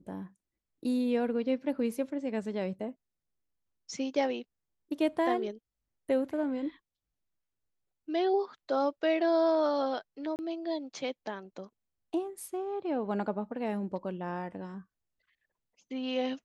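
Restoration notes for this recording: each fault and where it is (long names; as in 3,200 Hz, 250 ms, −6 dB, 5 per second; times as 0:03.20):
0:10.36–0:10.39: drop-out 29 ms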